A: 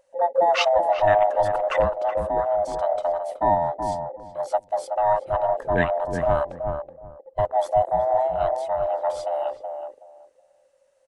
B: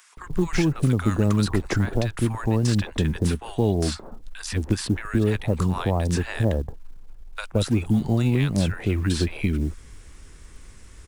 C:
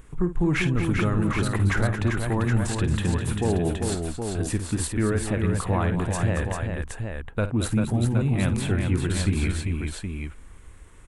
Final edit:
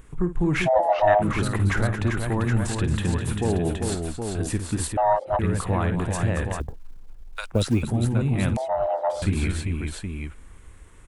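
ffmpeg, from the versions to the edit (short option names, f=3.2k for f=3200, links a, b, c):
-filter_complex "[0:a]asplit=3[a][b][c];[2:a]asplit=5[d][e][f][g][h];[d]atrim=end=0.69[i];[a]atrim=start=0.65:end=1.23[j];[e]atrim=start=1.19:end=4.972[k];[b]atrim=start=4.968:end=5.392[l];[f]atrim=start=5.388:end=6.602[m];[1:a]atrim=start=6.598:end=7.832[n];[g]atrim=start=7.828:end=8.572[o];[c]atrim=start=8.568:end=9.222[p];[h]atrim=start=9.218[q];[i][j]acrossfade=d=0.04:c1=tri:c2=tri[r];[r][k]acrossfade=d=0.04:c1=tri:c2=tri[s];[s][l]acrossfade=d=0.004:c1=hsin:c2=hsin[t];[t][m]acrossfade=d=0.004:c1=hsin:c2=hsin[u];[u][n]acrossfade=d=0.004:c1=hsin:c2=hsin[v];[v][o]acrossfade=d=0.004:c1=hsin:c2=hsin[w];[w][p]acrossfade=d=0.004:c1=hsin:c2=hsin[x];[x][q]acrossfade=d=0.004:c1=hsin:c2=hsin"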